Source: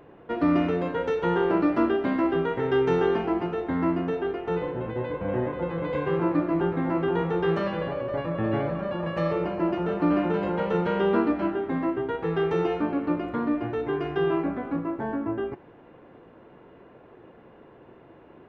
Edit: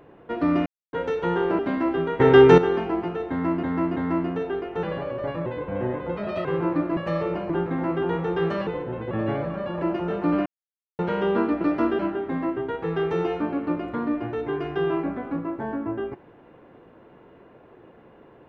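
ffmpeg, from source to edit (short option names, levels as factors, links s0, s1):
-filter_complex "[0:a]asplit=21[s0][s1][s2][s3][s4][s5][s6][s7][s8][s9][s10][s11][s12][s13][s14][s15][s16][s17][s18][s19][s20];[s0]atrim=end=0.66,asetpts=PTS-STARTPTS,afade=t=out:st=0.656:d=0.004:c=hsin[s21];[s1]atrim=start=0.66:end=0.93,asetpts=PTS-STARTPTS,volume=0[s22];[s2]atrim=start=0.93:end=1.592,asetpts=PTS-STARTPTS,afade=t=in:d=0.004:c=hsin[s23];[s3]atrim=start=1.968:end=2.582[s24];[s4]atrim=start=2.578:end=2.962,asetpts=PTS-STARTPTS,volume=3.35[s25];[s5]atrim=start=2.958:end=4.012[s26];[s6]atrim=start=3.678:end=4.012[s27];[s7]atrim=start=3.678:end=4.552[s28];[s8]atrim=start=7.728:end=8.362[s29];[s9]atrim=start=4.988:end=5.704[s30];[s10]atrim=start=5.7:end=6.04,asetpts=PTS-STARTPTS,asetrate=53802,aresample=44100,atrim=end_sample=12290,asetpts=PTS-STARTPTS[s31];[s11]atrim=start=6.036:end=6.562[s32];[s12]atrim=start=9.068:end=9.602[s33];[s13]atrim=start=6.558:end=7.732[s34];[s14]atrim=start=4.548:end=4.992[s35];[s15]atrim=start=8.358:end=9.072[s36];[s16]atrim=start=9.598:end=10.24,asetpts=PTS-STARTPTS,afade=t=out:st=0.638:d=0.004:c=hsin[s37];[s17]atrim=start=10.24:end=10.77,asetpts=PTS-STARTPTS,volume=0[s38];[s18]atrim=start=10.77:end=11.392,asetpts=PTS-STARTPTS,afade=t=in:d=0.004:c=hsin[s39];[s19]atrim=start=1.588:end=1.972[s40];[s20]atrim=start=11.388[s41];[s21][s22][s23]concat=n=3:v=0:a=1[s42];[s42][s24]acrossfade=d=0.004:c1=hsin:c2=hsin[s43];[s43][s25]acrossfade=d=0.004:c1=hsin:c2=hsin[s44];[s44][s26]acrossfade=d=0.004:c1=hsin:c2=hsin[s45];[s45][s27]acrossfade=d=0.004:c1=hsin:c2=hsin[s46];[s46][s28]acrossfade=d=0.004:c1=hsin:c2=hsin[s47];[s47][s29]acrossfade=d=0.004:c1=hsin:c2=hsin[s48];[s48][s30]acrossfade=d=0.004:c1=hsin:c2=hsin[s49];[s49][s31]acrossfade=d=0.004:c1=hsin:c2=hsin[s50];[s50][s32]acrossfade=d=0.004:c1=hsin:c2=hsin[s51];[s51][s33]acrossfade=d=0.004:c1=hsin:c2=hsin[s52];[s52][s34]acrossfade=d=0.004:c1=hsin:c2=hsin[s53];[s53][s35]acrossfade=d=0.004:c1=hsin:c2=hsin[s54];[s54][s36]acrossfade=d=0.004:c1=hsin:c2=hsin[s55];[s37][s38][s39]concat=n=3:v=0:a=1[s56];[s55][s56]acrossfade=d=0.004:c1=hsin:c2=hsin[s57];[s57][s40]acrossfade=d=0.004:c1=hsin:c2=hsin[s58];[s58][s41]acrossfade=d=0.004:c1=hsin:c2=hsin"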